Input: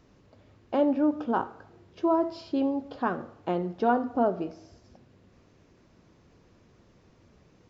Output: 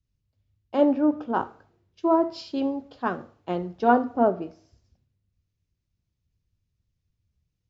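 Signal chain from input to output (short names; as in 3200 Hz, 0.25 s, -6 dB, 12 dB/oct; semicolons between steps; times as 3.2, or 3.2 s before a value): three-band expander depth 100%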